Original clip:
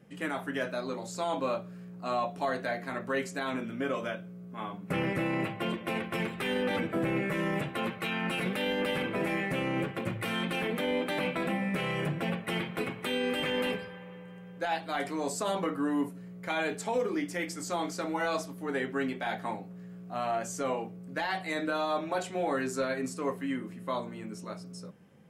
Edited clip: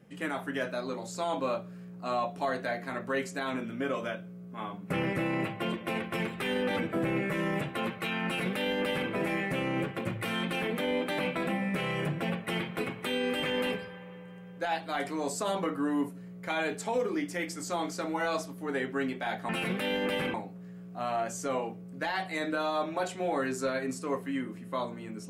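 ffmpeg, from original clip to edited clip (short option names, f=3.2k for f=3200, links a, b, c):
-filter_complex "[0:a]asplit=3[a][b][c];[a]atrim=end=19.492[d];[b]atrim=start=8.248:end=9.102[e];[c]atrim=start=19.488[f];[d][e]acrossfade=d=0.004:c1=hsin:c2=hsin[g];[g][f]acrossfade=d=0.004:c1=hsin:c2=hsin"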